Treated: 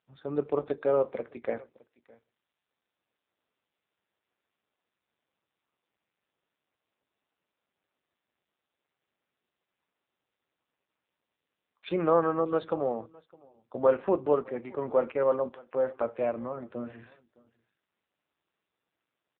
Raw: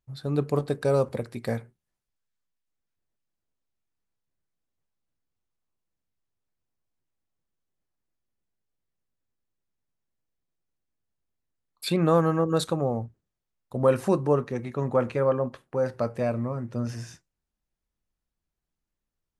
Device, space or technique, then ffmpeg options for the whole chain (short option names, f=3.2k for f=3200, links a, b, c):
satellite phone: -af "highpass=330,lowpass=3.1k,aecho=1:1:611:0.0668" -ar 8000 -c:a libopencore_amrnb -b:a 5900